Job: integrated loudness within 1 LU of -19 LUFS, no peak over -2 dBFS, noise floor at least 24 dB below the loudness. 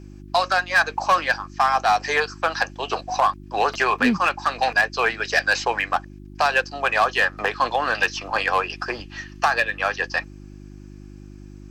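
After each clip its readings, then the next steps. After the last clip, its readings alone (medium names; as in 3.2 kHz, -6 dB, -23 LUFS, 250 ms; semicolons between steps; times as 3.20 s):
clipped samples 0.3%; clipping level -10.5 dBFS; hum 50 Hz; highest harmonic 350 Hz; hum level -39 dBFS; loudness -21.5 LUFS; peak level -10.5 dBFS; loudness target -19.0 LUFS
-> clip repair -10.5 dBFS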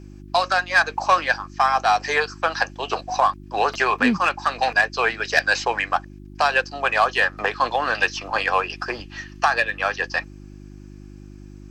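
clipped samples 0.0%; hum 50 Hz; highest harmonic 350 Hz; hum level -39 dBFS
-> de-hum 50 Hz, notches 7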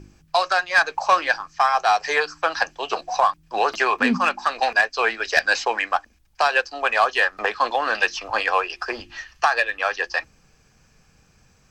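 hum not found; loudness -21.5 LUFS; peak level -1.5 dBFS; loudness target -19.0 LUFS
-> trim +2.5 dB; peak limiter -2 dBFS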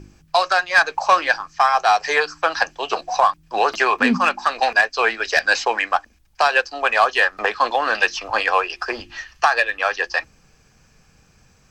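loudness -19.0 LUFS; peak level -2.0 dBFS; noise floor -56 dBFS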